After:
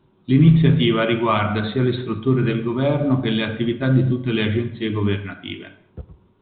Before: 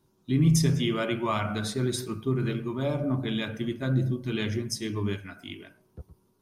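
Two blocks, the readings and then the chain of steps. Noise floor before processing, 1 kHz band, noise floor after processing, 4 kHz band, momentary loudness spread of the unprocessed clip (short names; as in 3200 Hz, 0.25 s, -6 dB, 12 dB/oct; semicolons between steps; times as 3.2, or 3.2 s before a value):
-68 dBFS, +9.5 dB, -58 dBFS, +7.0 dB, 10 LU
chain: non-linear reverb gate 0.26 s falling, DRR 12 dB; gain +9 dB; µ-law 64 kbps 8000 Hz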